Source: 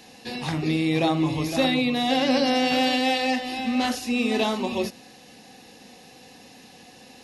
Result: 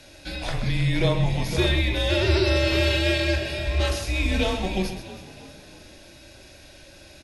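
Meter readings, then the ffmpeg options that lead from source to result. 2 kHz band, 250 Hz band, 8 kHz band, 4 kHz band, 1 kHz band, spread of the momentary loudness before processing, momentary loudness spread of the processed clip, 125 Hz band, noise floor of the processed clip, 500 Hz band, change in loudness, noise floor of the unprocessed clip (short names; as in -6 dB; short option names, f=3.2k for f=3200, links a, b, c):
+1.5 dB, -5.0 dB, +0.5 dB, 0.0 dB, -8.0 dB, 7 LU, 12 LU, +8.5 dB, -48 dBFS, +0.5 dB, 0.0 dB, -49 dBFS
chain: -filter_complex "[0:a]asplit=2[a][b];[b]asplit=5[c][d][e][f][g];[c]adelay=320,afreqshift=40,volume=-16dB[h];[d]adelay=640,afreqshift=80,volume=-21.8dB[i];[e]adelay=960,afreqshift=120,volume=-27.7dB[j];[f]adelay=1280,afreqshift=160,volume=-33.5dB[k];[g]adelay=1600,afreqshift=200,volume=-39.4dB[l];[h][i][j][k][l]amix=inputs=5:normalize=0[m];[a][m]amix=inputs=2:normalize=0,afreqshift=-180,asplit=2[n][o];[o]aecho=0:1:40.82|128.3:0.282|0.316[p];[n][p]amix=inputs=2:normalize=0"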